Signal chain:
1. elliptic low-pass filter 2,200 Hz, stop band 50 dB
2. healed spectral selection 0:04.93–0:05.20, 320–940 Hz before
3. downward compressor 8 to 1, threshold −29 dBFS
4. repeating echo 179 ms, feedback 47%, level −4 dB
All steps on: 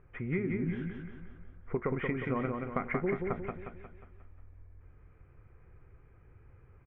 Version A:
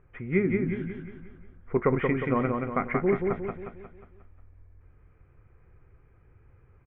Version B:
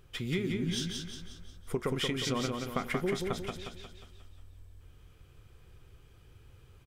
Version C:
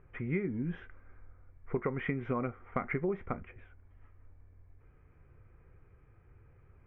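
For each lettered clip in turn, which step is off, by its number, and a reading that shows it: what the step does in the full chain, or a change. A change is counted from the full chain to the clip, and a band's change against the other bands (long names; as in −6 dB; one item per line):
3, average gain reduction 2.5 dB
1, change in momentary loudness spread −1 LU
4, echo-to-direct ratio −3.0 dB to none audible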